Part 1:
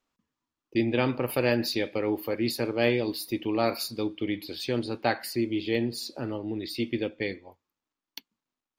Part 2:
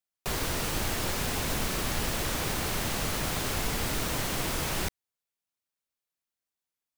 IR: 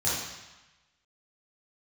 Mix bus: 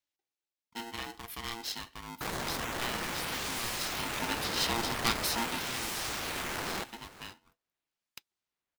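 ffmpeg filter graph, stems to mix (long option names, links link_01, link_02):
-filter_complex "[0:a]highshelf=frequency=2100:width_type=q:width=1.5:gain=10,volume=-6dB,afade=type=in:start_time=3.95:duration=0.45:silence=0.281838,afade=type=out:start_time=5.33:duration=0.31:silence=0.237137[link_01];[1:a]highpass=frequency=530:poles=1,acrusher=samples=11:mix=1:aa=0.000001:lfo=1:lforange=17.6:lforate=0.44,adelay=1950,volume=-3dB,asplit=2[link_02][link_03];[link_03]volume=-17.5dB,aecho=0:1:489:1[link_04];[link_01][link_02][link_04]amix=inputs=3:normalize=0,aeval=exprs='val(0)*sgn(sin(2*PI*580*n/s))':channel_layout=same"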